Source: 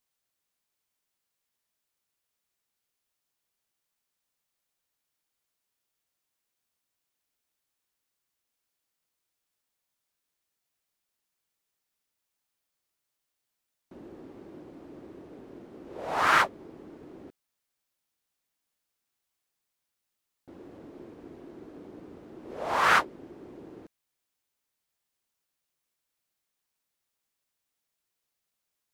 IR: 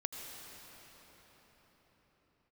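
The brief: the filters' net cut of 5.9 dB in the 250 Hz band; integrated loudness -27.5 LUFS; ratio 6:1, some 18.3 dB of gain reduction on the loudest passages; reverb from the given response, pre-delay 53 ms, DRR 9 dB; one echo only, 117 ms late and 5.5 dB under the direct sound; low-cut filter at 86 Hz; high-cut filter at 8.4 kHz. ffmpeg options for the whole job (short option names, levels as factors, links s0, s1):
-filter_complex "[0:a]highpass=86,lowpass=8400,equalizer=f=250:t=o:g=-8.5,acompressor=threshold=0.0126:ratio=6,aecho=1:1:117:0.531,asplit=2[s0][s1];[1:a]atrim=start_sample=2205,adelay=53[s2];[s1][s2]afir=irnorm=-1:irlink=0,volume=0.335[s3];[s0][s3]amix=inputs=2:normalize=0,volume=7.5"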